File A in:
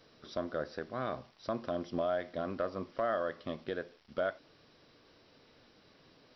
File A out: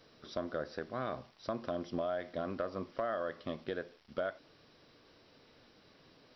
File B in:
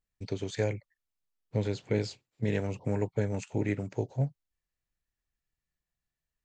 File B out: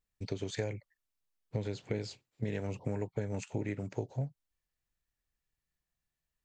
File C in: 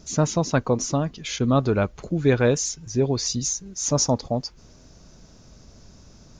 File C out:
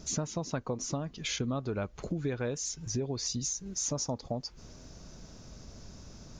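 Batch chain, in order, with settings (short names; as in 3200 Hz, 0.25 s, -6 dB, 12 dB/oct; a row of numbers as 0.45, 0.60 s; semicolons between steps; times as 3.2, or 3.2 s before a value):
compressor 6:1, threshold -31 dBFS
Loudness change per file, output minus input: -2.0, -5.5, -11.0 LU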